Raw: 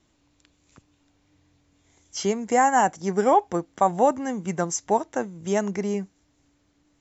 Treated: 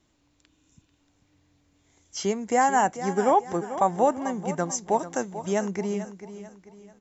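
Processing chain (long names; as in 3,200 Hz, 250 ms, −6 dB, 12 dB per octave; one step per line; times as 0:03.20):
0:00.50–0:00.89: healed spectral selection 250–5,100 Hz after
0:04.99–0:05.45: high-shelf EQ 4,700 Hz +11 dB
on a send: repeating echo 441 ms, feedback 39%, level −12.5 dB
on the sum: level −2 dB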